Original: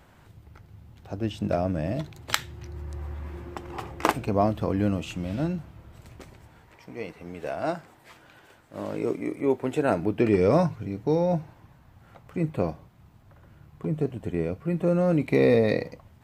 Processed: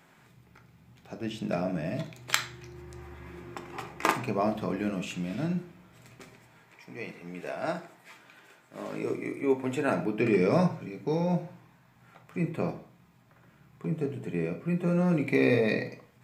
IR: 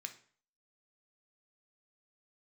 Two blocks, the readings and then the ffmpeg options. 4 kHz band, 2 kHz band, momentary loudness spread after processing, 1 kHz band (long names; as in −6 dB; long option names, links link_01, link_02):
−1.0 dB, +1.0 dB, 20 LU, −3.0 dB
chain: -filter_complex "[1:a]atrim=start_sample=2205[link_01];[0:a][link_01]afir=irnorm=-1:irlink=0,volume=3dB"